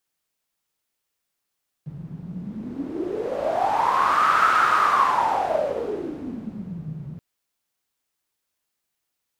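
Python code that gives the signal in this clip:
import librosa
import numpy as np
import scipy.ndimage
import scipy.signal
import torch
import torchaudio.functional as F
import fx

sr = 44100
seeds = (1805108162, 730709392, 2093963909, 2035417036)

y = fx.wind(sr, seeds[0], length_s=5.33, low_hz=150.0, high_hz=1300.0, q=9.5, gusts=1, swing_db=18)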